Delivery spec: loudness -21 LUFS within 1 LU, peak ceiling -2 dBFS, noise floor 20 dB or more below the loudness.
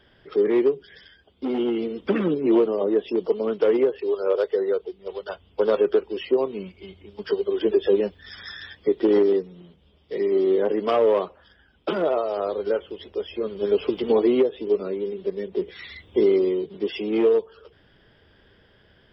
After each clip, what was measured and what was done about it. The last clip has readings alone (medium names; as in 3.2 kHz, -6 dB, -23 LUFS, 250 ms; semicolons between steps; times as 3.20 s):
loudness -23.0 LUFS; peak level -9.5 dBFS; loudness target -21.0 LUFS
-> trim +2 dB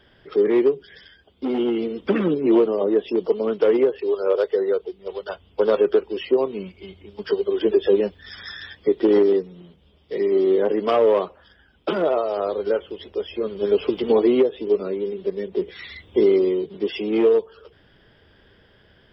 loudness -21.0 LUFS; peak level -7.5 dBFS; noise floor -56 dBFS